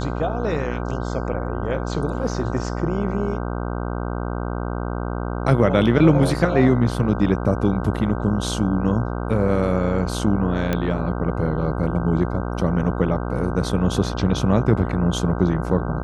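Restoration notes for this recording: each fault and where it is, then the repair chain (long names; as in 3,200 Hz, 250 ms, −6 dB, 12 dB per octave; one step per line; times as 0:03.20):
mains buzz 60 Hz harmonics 26 −26 dBFS
0:10.73: click −9 dBFS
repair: click removal
hum removal 60 Hz, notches 26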